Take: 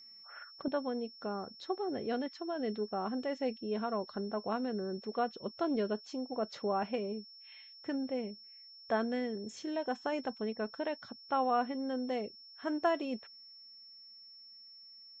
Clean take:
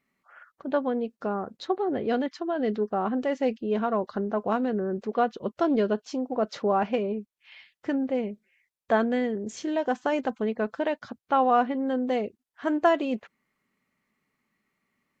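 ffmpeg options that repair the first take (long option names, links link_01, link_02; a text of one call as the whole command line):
ffmpeg -i in.wav -af "bandreject=frequency=5400:width=30,asetnsamples=nb_out_samples=441:pad=0,asendcmd='0.68 volume volume 9dB',volume=0dB" out.wav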